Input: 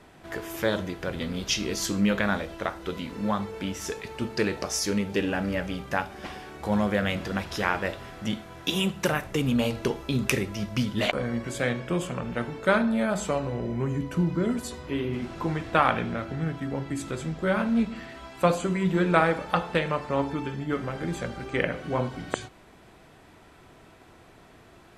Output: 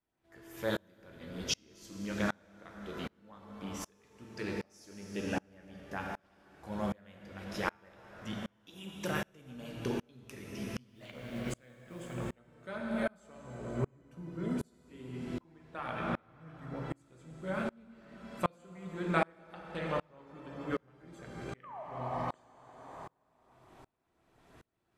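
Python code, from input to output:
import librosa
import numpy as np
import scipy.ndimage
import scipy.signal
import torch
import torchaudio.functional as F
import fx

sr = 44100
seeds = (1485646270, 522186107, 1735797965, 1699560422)

y = fx.filter_lfo_notch(x, sr, shape='saw_up', hz=5.7, low_hz=370.0, high_hz=4500.0, q=2.7)
y = fx.quant_companded(y, sr, bits=6, at=(10.89, 12.14))
y = fx.spec_paint(y, sr, seeds[0], shape='fall', start_s=21.63, length_s=0.2, low_hz=580.0, high_hz=1300.0, level_db=-16.0)
y = fx.rev_plate(y, sr, seeds[1], rt60_s=3.6, hf_ratio=0.65, predelay_ms=0, drr_db=2.5)
y = fx.tremolo_decay(y, sr, direction='swelling', hz=1.3, depth_db=34)
y = y * librosa.db_to_amplitude(-5.0)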